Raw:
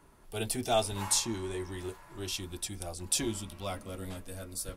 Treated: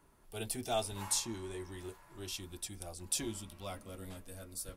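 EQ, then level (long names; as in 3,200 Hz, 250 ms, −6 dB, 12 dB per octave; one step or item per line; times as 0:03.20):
high-shelf EQ 11,000 Hz +5 dB
−6.5 dB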